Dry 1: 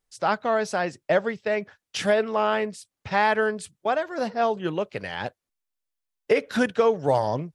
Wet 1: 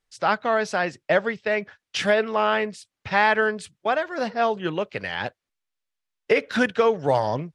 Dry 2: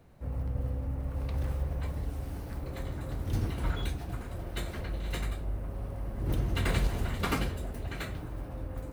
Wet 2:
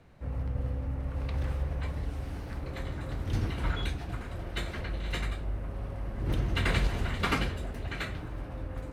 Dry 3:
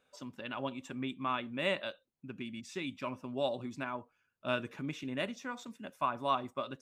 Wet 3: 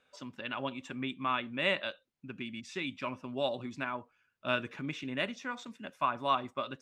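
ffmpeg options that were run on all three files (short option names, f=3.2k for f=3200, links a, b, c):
-filter_complex "[0:a]aemphasis=mode=reproduction:type=50fm,acrossover=split=1400[a][b];[b]acontrast=73[c];[a][c]amix=inputs=2:normalize=0"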